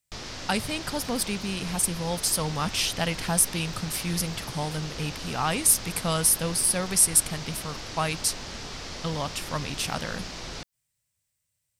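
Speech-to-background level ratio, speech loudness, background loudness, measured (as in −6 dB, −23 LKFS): 11.0 dB, −26.0 LKFS, −37.0 LKFS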